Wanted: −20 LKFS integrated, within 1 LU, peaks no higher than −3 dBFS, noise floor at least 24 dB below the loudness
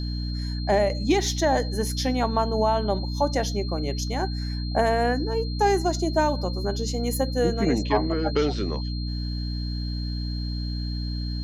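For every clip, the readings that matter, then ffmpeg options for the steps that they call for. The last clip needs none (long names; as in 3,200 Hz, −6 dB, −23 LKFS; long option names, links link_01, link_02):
mains hum 60 Hz; hum harmonics up to 300 Hz; level of the hum −26 dBFS; interfering tone 4,200 Hz; level of the tone −38 dBFS; integrated loudness −25.5 LKFS; sample peak −9.0 dBFS; target loudness −20.0 LKFS
→ -af "bandreject=frequency=60:width_type=h:width=4,bandreject=frequency=120:width_type=h:width=4,bandreject=frequency=180:width_type=h:width=4,bandreject=frequency=240:width_type=h:width=4,bandreject=frequency=300:width_type=h:width=4"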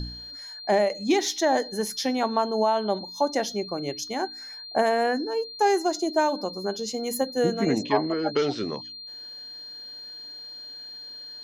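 mains hum none found; interfering tone 4,200 Hz; level of the tone −38 dBFS
→ -af "bandreject=frequency=4200:width=30"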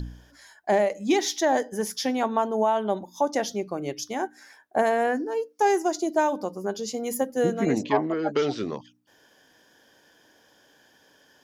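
interfering tone none found; integrated loudness −26.0 LKFS; sample peak −9.5 dBFS; target loudness −20.0 LKFS
→ -af "volume=6dB"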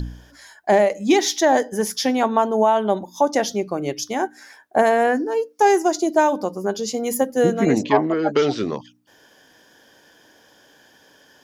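integrated loudness −20.0 LKFS; sample peak −3.5 dBFS; background noise floor −54 dBFS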